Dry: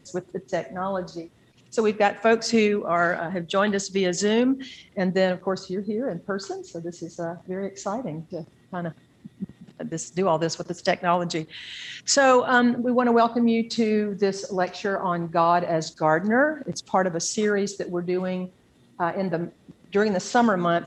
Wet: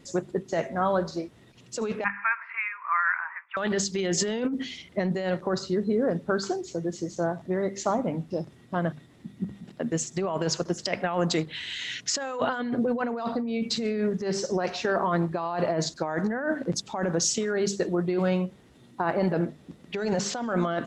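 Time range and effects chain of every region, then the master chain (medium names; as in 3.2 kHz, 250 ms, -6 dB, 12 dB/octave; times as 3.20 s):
2.04–3.57 s: companding laws mixed up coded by mu + Chebyshev band-pass 970–2400 Hz, order 4 + distance through air 63 m
whole clip: treble shelf 6.8 kHz -2.5 dB; hum notches 50/100/150/200/250 Hz; compressor with a negative ratio -26 dBFS, ratio -1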